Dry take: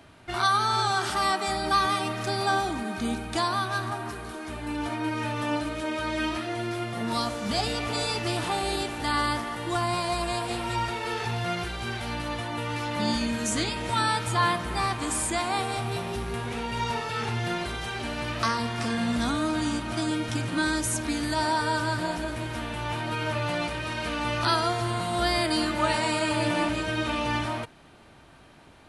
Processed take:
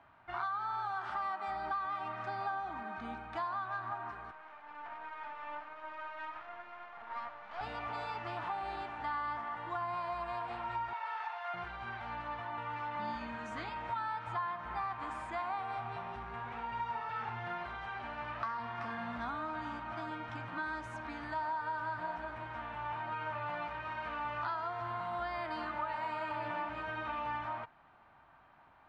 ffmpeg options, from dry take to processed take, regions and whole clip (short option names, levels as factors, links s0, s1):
-filter_complex "[0:a]asettb=1/sr,asplit=3[s0][s1][s2];[s0]atrim=end=4.314[s3];[s1]atrim=start=4.31:end=7.61,asetpts=PTS-STARTPTS,afade=t=in:d=0.004:c=qsin,afade=t=out:st=3.296:d=0.004:c=qsin,highpass=570,lowpass=3200,aeval=exprs='max(val(0),0)':c=same[s4];[s2]atrim=start=7.606[s5];[s3][s4]acrossfade=d=0.004:c1=hsin:c2=qsin[s6];[s6][s5]acrossfade=d=0.004:c1=qsin:c2=hsin,asettb=1/sr,asplit=3[s7][s8][s9];[s7]atrim=end=10.934[s10];[s8]atrim=start=10.93:end=11.54,asetpts=PTS-STARTPTS,afade=t=in:d=0.004:c=qsin,afade=t=out:st=0.606:d=0.004:c=qsin,highpass=f=650:w=0.5412,highpass=f=650:w=1.3066,aeval=exprs='val(0)+0.000562*(sin(2*PI*50*n/s)+sin(2*PI*2*50*n/s)/2+sin(2*PI*3*50*n/s)/3+sin(2*PI*4*50*n/s)/4+sin(2*PI*5*50*n/s)/5)':c=same[s11];[s9]atrim=start=11.536[s12];[s10][s11]acrossfade=d=0.004:c1=hsin:c2=qsin[s13];[s13][s12]acrossfade=d=0.004:c1=qsin:c2=hsin,lowpass=1500,lowshelf=f=620:t=q:w=1.5:g=-11,acompressor=threshold=0.0355:ratio=6,volume=0.562"